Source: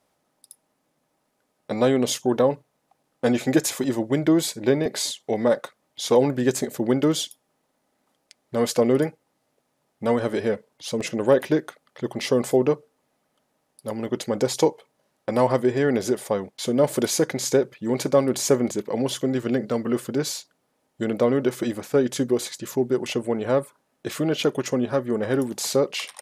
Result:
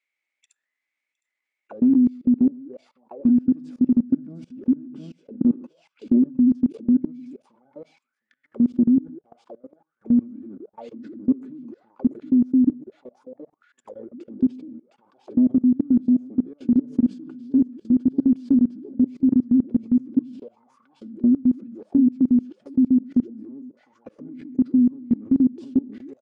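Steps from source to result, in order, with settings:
high-shelf EQ 3,800 Hz +7 dB
in parallel at 0 dB: brickwall limiter −16.5 dBFS, peak gain reduction 11 dB
on the sum: formants moved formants −6 semitones
repeating echo 711 ms, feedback 15%, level −9 dB
on a send at −12.5 dB: convolution reverb, pre-delay 3 ms
on the sum: envelope filter 250–2,200 Hz, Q 14, down, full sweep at −16 dBFS
high-shelf EQ 9,900 Hz +9 dB
output level in coarse steps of 23 dB
level +8.5 dB

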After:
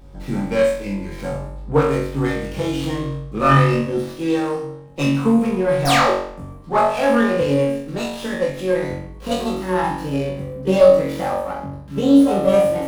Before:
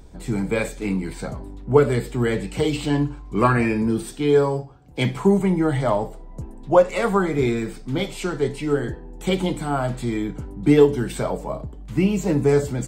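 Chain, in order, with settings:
pitch glide at a constant tempo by +5.5 semitones starting unshifted
sound drawn into the spectrogram fall, 0:05.85–0:06.11, 320–6,500 Hz −19 dBFS
flutter between parallel walls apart 3.7 metres, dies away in 0.6 s
on a send at −5 dB: convolution reverb RT60 0.35 s, pre-delay 3 ms
on the sum: windowed peak hold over 5 samples
level −2 dB

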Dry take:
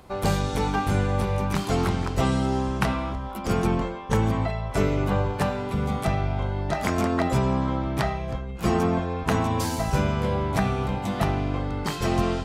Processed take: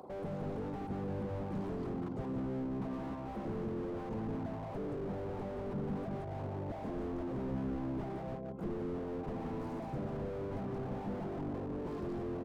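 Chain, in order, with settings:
spectral envelope exaggerated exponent 2
high-pass filter 390 Hz 12 dB per octave
parametric band 2,500 Hz −13.5 dB 1.9 octaves
downward compressor 6 to 1, threshold −39 dBFS, peak gain reduction 14.5 dB
single-tap delay 175 ms −7 dB
slew-rate limiting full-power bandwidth 2 Hz
level +8 dB

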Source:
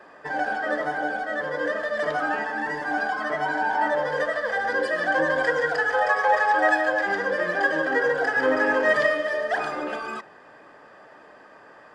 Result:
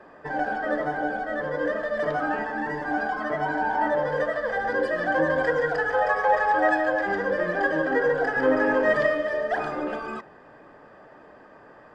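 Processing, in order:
spectral tilt −2.5 dB per octave
level −1.5 dB

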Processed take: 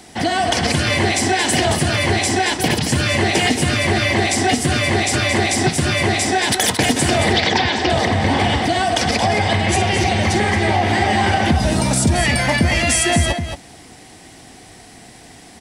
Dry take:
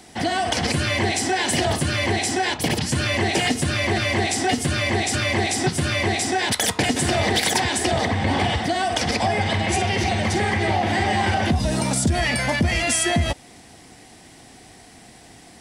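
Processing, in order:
0:07.18–0:07.90: low-pass filter 5,000 Hz 24 dB per octave
single-tap delay 224 ms −8 dB
level +4 dB

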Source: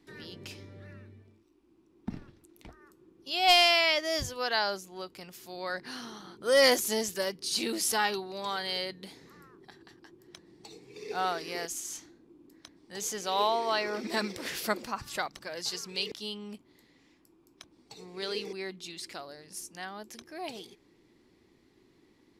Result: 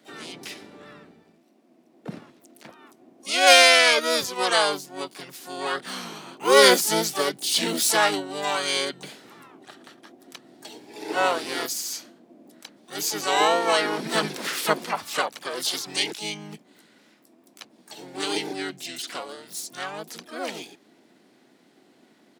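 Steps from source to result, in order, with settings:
Bessel high-pass filter 280 Hz, order 6
pitch-shifted copies added −5 semitones −1 dB, +7 semitones −13 dB, +12 semitones −6 dB
level +5 dB

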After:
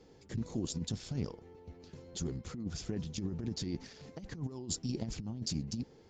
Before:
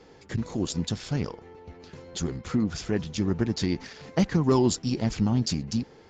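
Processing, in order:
parametric band 1,500 Hz −9 dB 2.7 octaves
compressor whose output falls as the input rises −28 dBFS, ratio −0.5
level −7.5 dB

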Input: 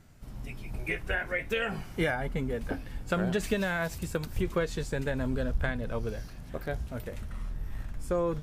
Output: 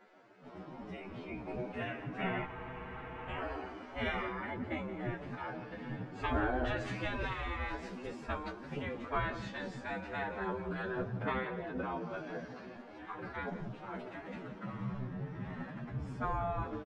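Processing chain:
gate on every frequency bin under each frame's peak −15 dB weak
dynamic equaliser 3,600 Hz, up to −3 dB, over −54 dBFS, Q 0.82
phase-vocoder stretch with locked phases 2×
head-to-tape spacing loss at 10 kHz 39 dB
double-tracking delay 16 ms −6.5 dB
on a send: single-tap delay 174 ms −13.5 dB
on the sum: frozen spectrum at 0:02.48, 0.80 s
level +9.5 dB

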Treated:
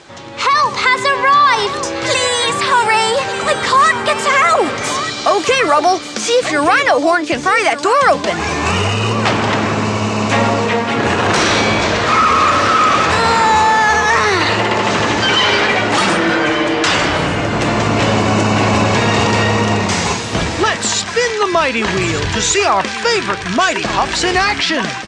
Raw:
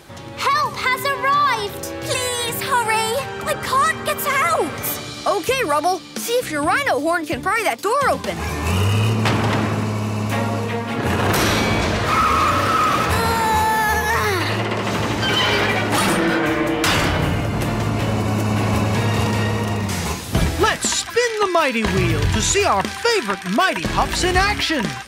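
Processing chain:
Butterworth low-pass 7,900 Hz 36 dB per octave
low-shelf EQ 170 Hz −11.5 dB
in parallel at 0 dB: brickwall limiter −16 dBFS, peak gain reduction 11.5 dB
on the sum: automatic gain control
on a send: single-tap delay 1,186 ms −12 dB
on the sum: level −1.5 dB

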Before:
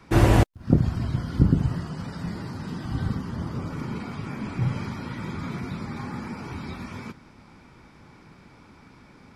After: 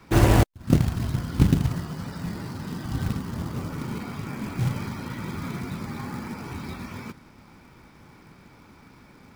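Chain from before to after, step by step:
floating-point word with a short mantissa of 2 bits

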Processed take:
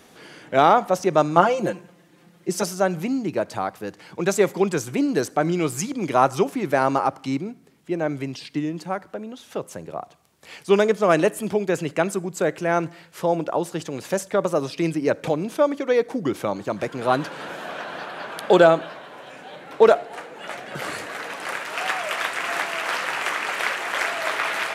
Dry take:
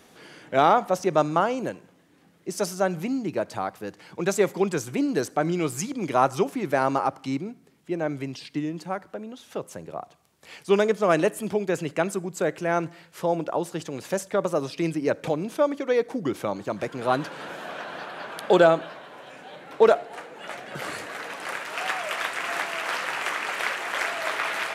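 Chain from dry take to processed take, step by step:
0:01.36–0:02.63: comb filter 5.7 ms, depth 85%
level +3 dB

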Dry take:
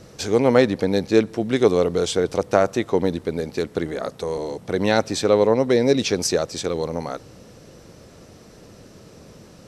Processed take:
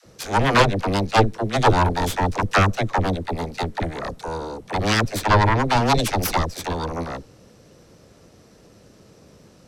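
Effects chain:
harmonic generator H 6 −6 dB, 7 −12 dB, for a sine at −1 dBFS
all-pass dispersion lows, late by 56 ms, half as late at 430 Hz
level −2.5 dB

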